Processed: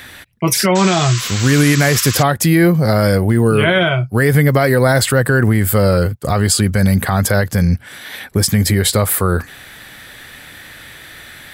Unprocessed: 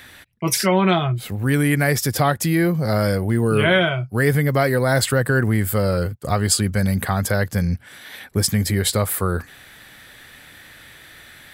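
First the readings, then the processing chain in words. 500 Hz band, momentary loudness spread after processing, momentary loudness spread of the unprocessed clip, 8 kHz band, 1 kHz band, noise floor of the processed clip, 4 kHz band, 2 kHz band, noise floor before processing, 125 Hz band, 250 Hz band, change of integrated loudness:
+5.0 dB, 6 LU, 7 LU, +6.0 dB, +4.5 dB, -38 dBFS, +6.0 dB, +5.0 dB, -46 dBFS, +6.0 dB, +6.0 dB, +5.5 dB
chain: limiter -11 dBFS, peak gain reduction 7 dB; painted sound noise, 0.75–2.23, 980–8100 Hz -32 dBFS; gain +7.5 dB

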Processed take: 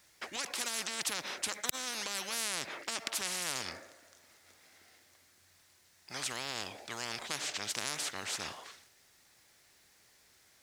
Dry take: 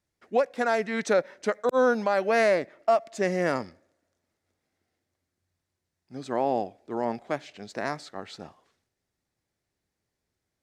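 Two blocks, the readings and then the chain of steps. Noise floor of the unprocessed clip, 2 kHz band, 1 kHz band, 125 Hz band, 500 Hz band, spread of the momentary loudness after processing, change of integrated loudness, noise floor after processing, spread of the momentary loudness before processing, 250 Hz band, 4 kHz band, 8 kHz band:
-84 dBFS, -7.0 dB, -14.0 dB, -12.5 dB, -22.5 dB, 8 LU, -9.5 dB, -66 dBFS, 17 LU, -18.0 dB, +7.5 dB, +11.0 dB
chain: limiter -17 dBFS, peak gain reduction 5 dB; tilt shelf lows -8.5 dB, about 650 Hz; spectral compressor 10:1; gain +2 dB

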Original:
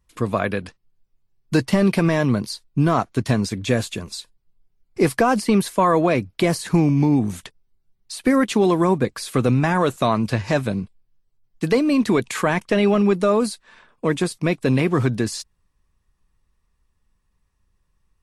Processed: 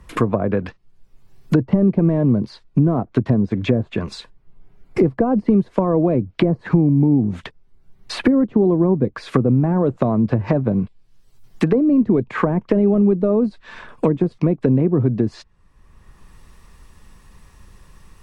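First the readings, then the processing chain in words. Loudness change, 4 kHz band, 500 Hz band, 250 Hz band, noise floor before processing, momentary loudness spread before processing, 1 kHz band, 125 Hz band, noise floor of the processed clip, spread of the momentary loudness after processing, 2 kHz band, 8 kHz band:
+2.0 dB, -6.5 dB, +1.0 dB, +3.5 dB, -69 dBFS, 10 LU, -5.5 dB, +3.5 dB, -53 dBFS, 8 LU, -6.5 dB, under -10 dB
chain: treble ducked by the level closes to 470 Hz, closed at -16.5 dBFS; three-band squash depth 70%; gain +3.5 dB

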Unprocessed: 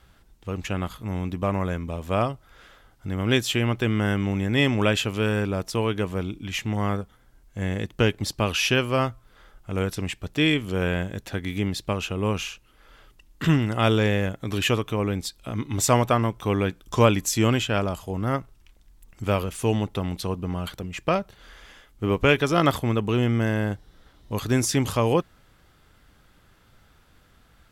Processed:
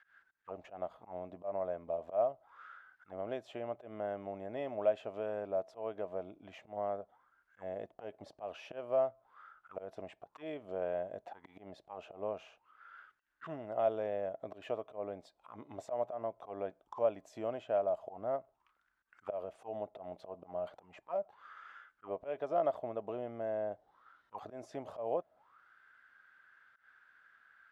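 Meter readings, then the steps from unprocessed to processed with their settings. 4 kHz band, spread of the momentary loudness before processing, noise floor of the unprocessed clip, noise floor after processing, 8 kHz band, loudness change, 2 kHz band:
under -30 dB, 11 LU, -58 dBFS, -78 dBFS, under -35 dB, -14.5 dB, -25.5 dB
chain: compressor 2:1, threshold -28 dBFS, peak gain reduction 9 dB; auto swell 0.122 s; auto-wah 640–1700 Hz, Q 9, down, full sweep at -31.5 dBFS; gain +7.5 dB

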